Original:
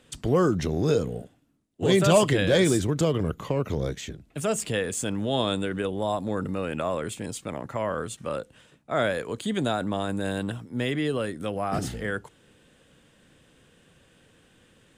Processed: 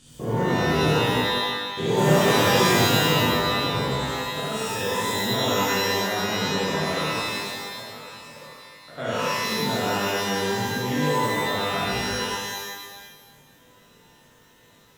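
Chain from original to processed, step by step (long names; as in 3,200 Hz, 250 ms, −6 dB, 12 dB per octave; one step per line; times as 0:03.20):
spectrum averaged block by block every 200 ms
0:07.34–0:08.98: downward compressor 2.5 to 1, threshold −51 dBFS, peak gain reduction 17.5 dB
reverb with rising layers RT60 1.3 s, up +12 semitones, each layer −2 dB, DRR −8.5 dB
level −8 dB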